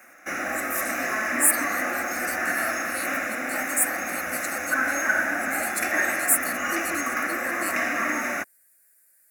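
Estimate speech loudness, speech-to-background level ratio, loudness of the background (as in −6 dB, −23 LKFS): −28.5 LKFS, −2.5 dB, −26.0 LKFS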